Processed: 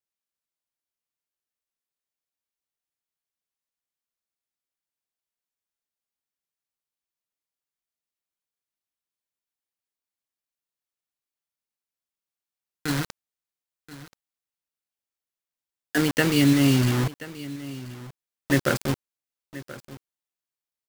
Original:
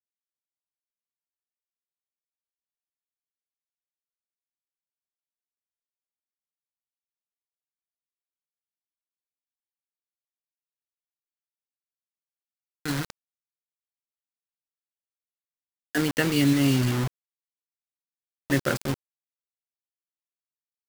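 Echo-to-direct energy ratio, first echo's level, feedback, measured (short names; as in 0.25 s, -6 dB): -17.0 dB, -17.0 dB, no steady repeat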